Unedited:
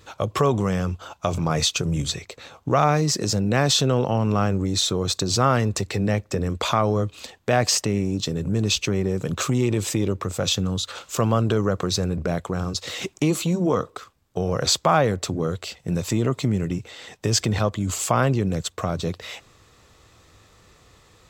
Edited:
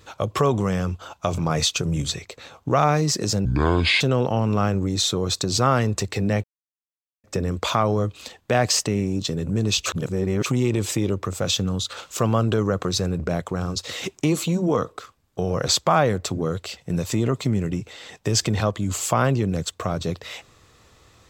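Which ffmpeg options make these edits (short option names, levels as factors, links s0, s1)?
-filter_complex "[0:a]asplit=6[s0][s1][s2][s3][s4][s5];[s0]atrim=end=3.454[s6];[s1]atrim=start=3.45:end=3.79,asetpts=PTS-STARTPTS,asetrate=26901,aresample=44100,atrim=end_sample=24580,asetpts=PTS-STARTPTS[s7];[s2]atrim=start=3.786:end=6.22,asetpts=PTS-STARTPTS,afade=t=out:st=2.43:d=0.004:c=hsin,apad=pad_dur=0.8[s8];[s3]atrim=start=6.22:end=8.842,asetpts=PTS-STARTPTS,afade=t=in:d=0.004:c=hsin[s9];[s4]atrim=start=8.838:end=9.442,asetpts=PTS-STARTPTS,areverse[s10];[s5]atrim=start=9.438[s11];[s6][s7]acrossfade=d=0.004:c1=hsin:c2=hsin[s12];[s8][s9]concat=n=2:v=0:a=1[s13];[s12][s13]acrossfade=d=0.004:c1=hsin:c2=hsin[s14];[s14][s10]acrossfade=d=0.004:c1=hsin:c2=hsin[s15];[s15][s11]acrossfade=d=0.004:c1=hsin:c2=hsin"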